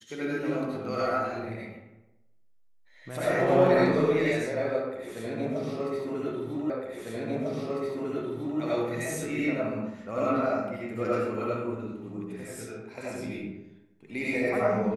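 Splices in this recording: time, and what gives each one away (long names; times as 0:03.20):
0:06.70: the same again, the last 1.9 s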